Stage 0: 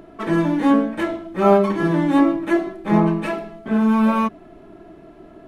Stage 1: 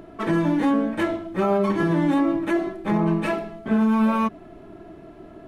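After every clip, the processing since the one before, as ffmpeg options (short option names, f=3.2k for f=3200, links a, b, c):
-af "equalizer=f=98:t=o:w=0.77:g=5,alimiter=limit=-12.5dB:level=0:latency=1:release=105"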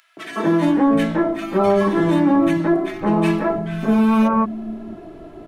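-filter_complex "[0:a]acrossover=split=150|1700[a][b][c];[b]adelay=170[d];[a]adelay=660[e];[e][d][c]amix=inputs=3:normalize=0,volume=5.5dB"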